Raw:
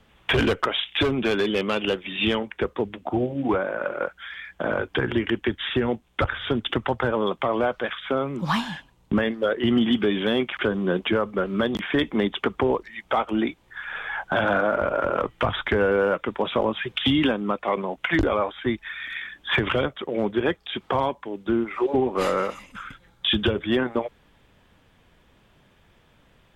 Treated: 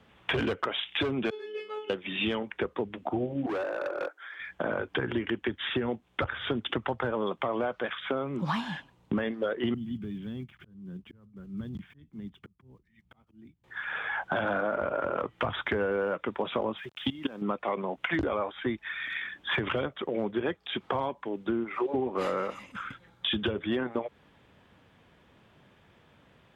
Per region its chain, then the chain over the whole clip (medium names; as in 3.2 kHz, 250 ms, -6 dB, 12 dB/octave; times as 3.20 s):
1.30–1.90 s: high-pass 290 Hz + feedback comb 430 Hz, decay 0.34 s, mix 100%
3.46–4.40 s: Chebyshev high-pass 290 Hz, order 10 + peaking EQ 2.9 kHz -11 dB 1.2 oct + overload inside the chain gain 26.5 dB
9.74–13.64 s: block-companded coder 5-bit + FFT filter 140 Hz 0 dB, 280 Hz -16 dB, 550 Hz -29 dB, 3.1 kHz -23 dB + slow attack 538 ms
16.77–17.42 s: level held to a coarse grid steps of 19 dB + small samples zeroed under -51 dBFS
whole clip: high-pass 83 Hz; treble shelf 5 kHz -9 dB; compression 2.5:1, threshold -29 dBFS